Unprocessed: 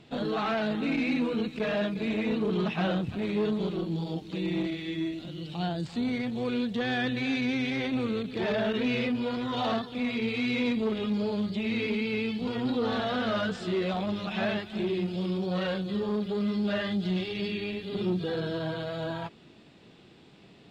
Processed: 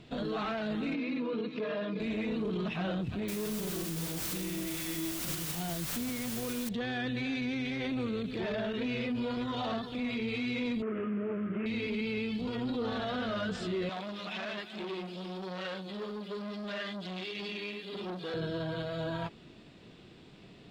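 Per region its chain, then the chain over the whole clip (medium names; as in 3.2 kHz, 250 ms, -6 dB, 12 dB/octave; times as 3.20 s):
0.94–2.00 s: cabinet simulation 200–5100 Hz, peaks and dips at 290 Hz +4 dB, 430 Hz +8 dB, 1.1 kHz +7 dB + comb of notches 380 Hz
3.28–6.69 s: elliptic low-pass 5.7 kHz + word length cut 6-bit, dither triangular
10.82–11.66 s: CVSD coder 16 kbps + cabinet simulation 150–2300 Hz, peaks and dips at 340 Hz +8 dB, 890 Hz -8 dB, 1.3 kHz +7 dB
13.89–18.34 s: high-pass 150 Hz 24 dB/octave + bass shelf 370 Hz -11.5 dB + transformer saturation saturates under 1.4 kHz
whole clip: bass shelf 61 Hz +10 dB; band-stop 830 Hz, Q 17; peak limiter -27.5 dBFS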